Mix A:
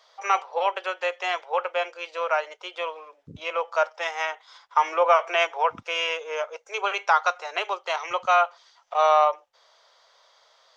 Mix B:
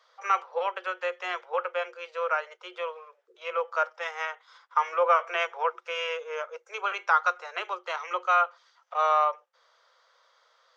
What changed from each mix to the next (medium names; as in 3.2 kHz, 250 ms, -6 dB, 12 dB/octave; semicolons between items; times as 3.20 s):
master: add rippled Chebyshev high-pass 350 Hz, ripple 9 dB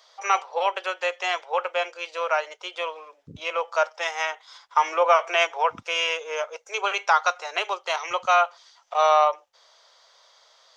first voice: add treble shelf 4.7 kHz +8.5 dB; master: remove rippled Chebyshev high-pass 350 Hz, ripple 9 dB